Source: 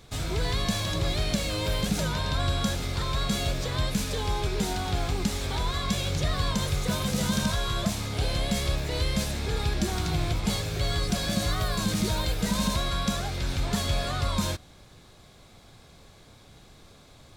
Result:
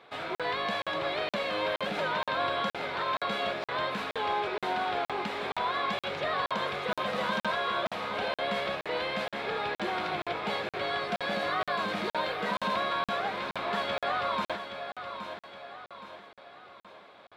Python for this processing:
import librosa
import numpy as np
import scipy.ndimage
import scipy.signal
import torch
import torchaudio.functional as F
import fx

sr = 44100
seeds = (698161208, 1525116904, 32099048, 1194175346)

y = scipy.signal.sosfilt(scipy.signal.butter(2, 600.0, 'highpass', fs=sr, output='sos'), x)
y = fx.air_absorb(y, sr, metres=480.0)
y = fx.echo_feedback(y, sr, ms=820, feedback_pct=45, wet_db=-9)
y = fx.buffer_crackle(y, sr, first_s=0.35, period_s=0.47, block=2048, kind='zero')
y = y * 10.0 ** (7.5 / 20.0)